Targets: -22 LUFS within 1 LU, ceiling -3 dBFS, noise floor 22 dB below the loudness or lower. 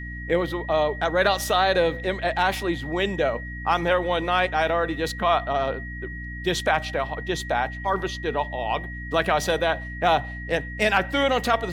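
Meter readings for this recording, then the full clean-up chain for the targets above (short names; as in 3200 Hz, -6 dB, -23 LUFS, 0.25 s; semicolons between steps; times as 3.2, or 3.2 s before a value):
hum 60 Hz; harmonics up to 300 Hz; hum level -33 dBFS; steady tone 1900 Hz; tone level -36 dBFS; loudness -24.0 LUFS; peak -6.0 dBFS; loudness target -22.0 LUFS
-> notches 60/120/180/240/300 Hz; notch 1900 Hz, Q 30; gain +2 dB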